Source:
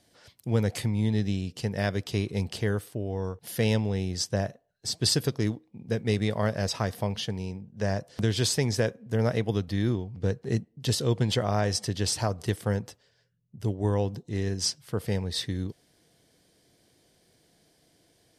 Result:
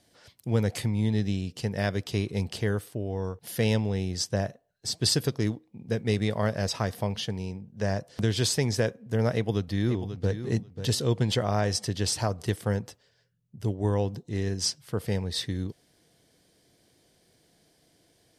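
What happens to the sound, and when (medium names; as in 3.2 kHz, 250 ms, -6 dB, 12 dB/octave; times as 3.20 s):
9.34–10.40 s: echo throw 540 ms, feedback 15%, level -10.5 dB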